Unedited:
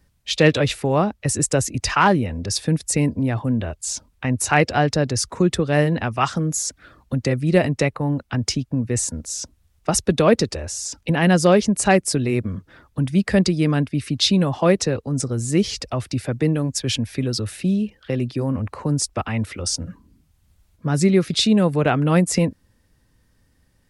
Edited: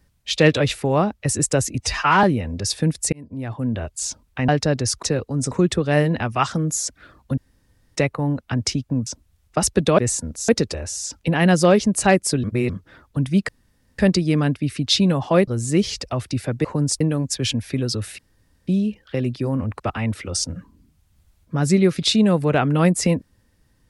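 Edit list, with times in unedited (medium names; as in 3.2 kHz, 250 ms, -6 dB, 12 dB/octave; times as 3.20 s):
1.80–2.09 s: stretch 1.5×
2.98–3.70 s: fade in
4.34–4.79 s: delete
7.19–7.77 s: room tone
8.88–9.38 s: move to 10.30 s
12.25–12.51 s: reverse
13.30 s: insert room tone 0.50 s
14.79–15.28 s: move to 5.33 s
17.63 s: insert room tone 0.49 s
18.75–19.11 s: move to 16.45 s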